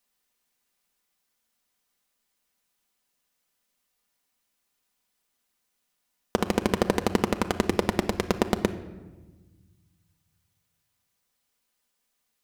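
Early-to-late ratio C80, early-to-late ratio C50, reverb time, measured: 15.5 dB, 13.5 dB, 1.3 s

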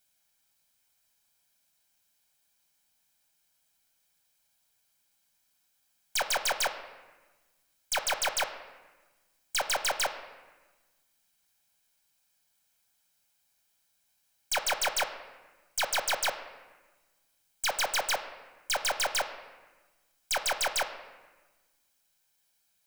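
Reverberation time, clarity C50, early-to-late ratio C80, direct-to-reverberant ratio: 1.2 s, 10.0 dB, 11.5 dB, 7.5 dB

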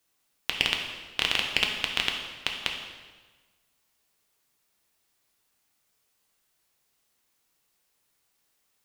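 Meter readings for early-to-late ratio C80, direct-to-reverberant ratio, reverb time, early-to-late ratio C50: 6.5 dB, 1.0 dB, 1.3 s, 4.5 dB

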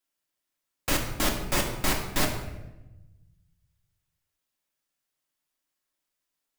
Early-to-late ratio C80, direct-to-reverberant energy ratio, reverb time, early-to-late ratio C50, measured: 8.5 dB, 0.0 dB, 1.0 s, 6.0 dB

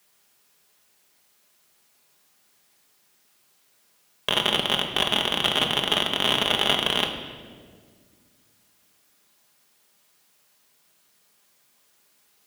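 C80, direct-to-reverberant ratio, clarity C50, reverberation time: 8.5 dB, 2.0 dB, 7.0 dB, 1.8 s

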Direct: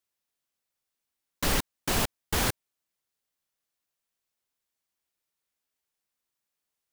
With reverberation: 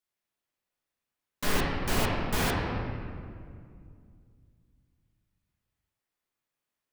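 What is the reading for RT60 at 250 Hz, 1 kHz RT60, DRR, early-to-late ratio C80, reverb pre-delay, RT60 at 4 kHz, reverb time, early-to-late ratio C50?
3.1 s, 2.0 s, -6.0 dB, 1.0 dB, 5 ms, 1.4 s, 2.3 s, -0.5 dB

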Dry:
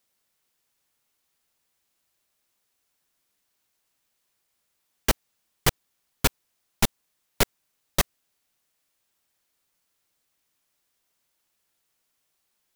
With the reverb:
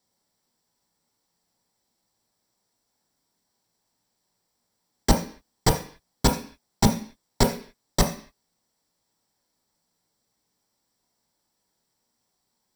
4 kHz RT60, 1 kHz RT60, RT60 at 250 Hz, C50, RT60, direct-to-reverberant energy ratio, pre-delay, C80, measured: n/a, 0.45 s, 0.55 s, 9.5 dB, 0.45 s, 2.5 dB, 15 ms, 14.0 dB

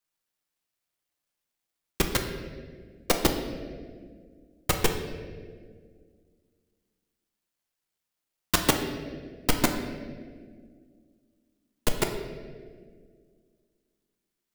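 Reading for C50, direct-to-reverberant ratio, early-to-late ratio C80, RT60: 6.5 dB, 3.5 dB, 8.0 dB, 1.9 s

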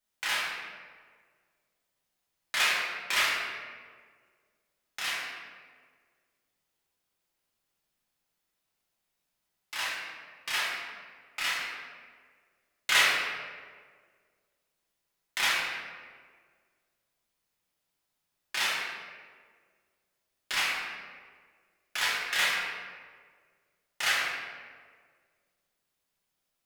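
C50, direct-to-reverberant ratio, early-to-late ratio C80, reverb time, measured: -1.0 dB, -8.5 dB, 1.0 dB, 1.7 s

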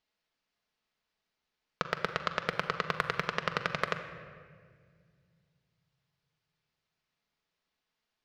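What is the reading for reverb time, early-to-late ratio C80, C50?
1.9 s, 10.5 dB, 9.0 dB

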